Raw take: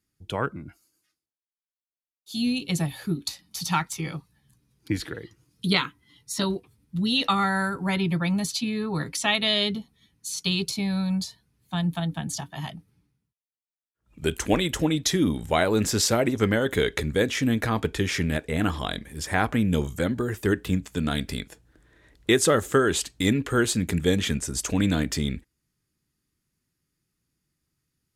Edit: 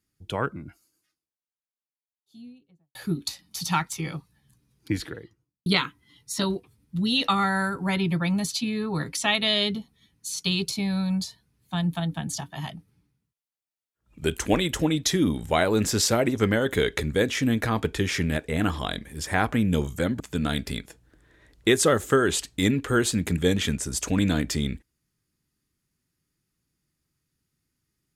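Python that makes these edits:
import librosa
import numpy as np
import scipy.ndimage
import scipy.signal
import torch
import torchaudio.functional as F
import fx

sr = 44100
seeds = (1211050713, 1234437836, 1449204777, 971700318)

y = fx.studio_fade_out(x, sr, start_s=0.66, length_s=2.29)
y = fx.studio_fade_out(y, sr, start_s=4.94, length_s=0.72)
y = fx.edit(y, sr, fx.cut(start_s=20.2, length_s=0.62), tone=tone)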